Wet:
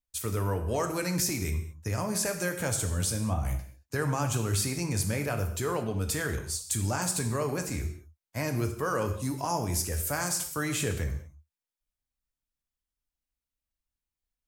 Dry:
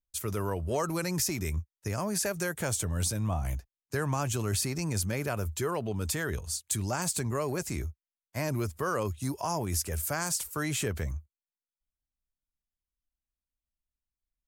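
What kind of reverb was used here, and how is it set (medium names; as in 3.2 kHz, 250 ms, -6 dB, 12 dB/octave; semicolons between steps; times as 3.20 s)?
gated-style reverb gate 250 ms falling, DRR 4.5 dB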